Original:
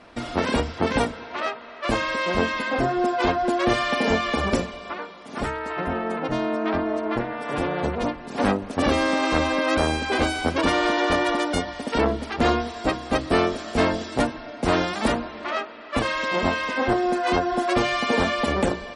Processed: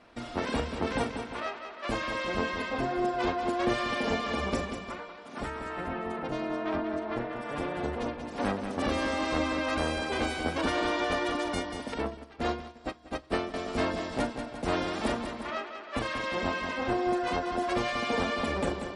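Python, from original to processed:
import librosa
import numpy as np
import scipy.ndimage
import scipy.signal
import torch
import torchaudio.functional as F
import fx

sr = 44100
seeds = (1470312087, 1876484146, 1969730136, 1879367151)

y = fx.echo_multitap(x, sr, ms=(42, 187, 352), db=(-13.0, -7.5, -12.5))
y = fx.upward_expand(y, sr, threshold_db=-28.0, expansion=2.5, at=(11.94, 13.54))
y = y * librosa.db_to_amplitude(-8.5)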